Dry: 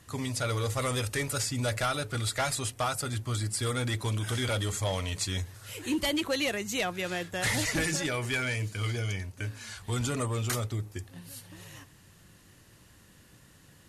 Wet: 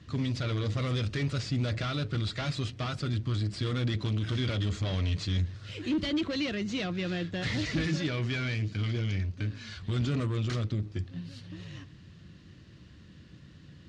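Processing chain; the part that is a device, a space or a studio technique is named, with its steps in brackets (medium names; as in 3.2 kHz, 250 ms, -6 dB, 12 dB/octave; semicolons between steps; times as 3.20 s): guitar amplifier (valve stage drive 32 dB, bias 0.45; tone controls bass +14 dB, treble +12 dB; cabinet simulation 76–4000 Hz, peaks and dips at 110 Hz -7 dB, 320 Hz +4 dB, 850 Hz -7 dB)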